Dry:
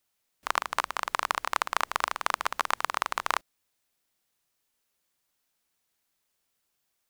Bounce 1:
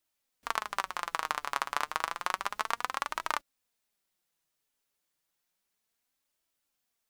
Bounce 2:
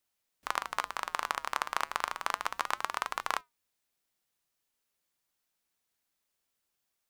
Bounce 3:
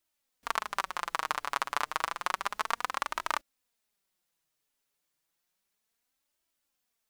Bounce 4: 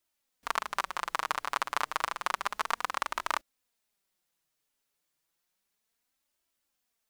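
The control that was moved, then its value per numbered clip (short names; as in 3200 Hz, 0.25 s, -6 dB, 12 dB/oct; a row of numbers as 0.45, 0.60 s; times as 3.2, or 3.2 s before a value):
flange, regen: +53, -87, +19, -6%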